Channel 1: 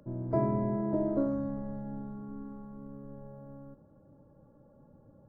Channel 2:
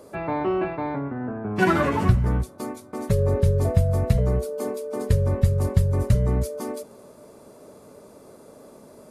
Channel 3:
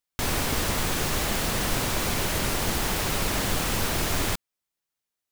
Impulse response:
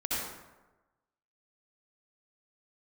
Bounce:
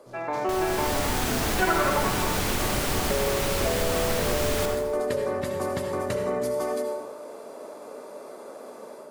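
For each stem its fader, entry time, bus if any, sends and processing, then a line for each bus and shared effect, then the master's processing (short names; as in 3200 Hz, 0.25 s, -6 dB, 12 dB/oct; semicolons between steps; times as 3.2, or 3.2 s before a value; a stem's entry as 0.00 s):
-13.0 dB, 0.00 s, no send, noise-modulated delay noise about 4700 Hz, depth 0.11 ms
-4.0 dB, 0.00 s, send -6.5 dB, HPF 460 Hz 12 dB/oct; high shelf 4400 Hz -8 dB; AGC gain up to 9 dB
-8.0 dB, 0.30 s, send -7.5 dB, AGC gain up to 9 dB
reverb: on, RT60 1.1 s, pre-delay 58 ms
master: compressor 2:1, threshold -26 dBFS, peak gain reduction 9 dB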